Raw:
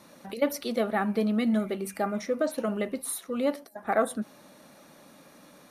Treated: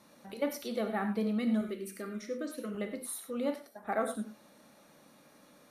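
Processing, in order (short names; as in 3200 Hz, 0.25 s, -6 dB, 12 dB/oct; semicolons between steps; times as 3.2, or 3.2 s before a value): 1.61–2.75 fixed phaser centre 320 Hz, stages 4; non-linear reverb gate 0.13 s flat, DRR 5.5 dB; gain -7.5 dB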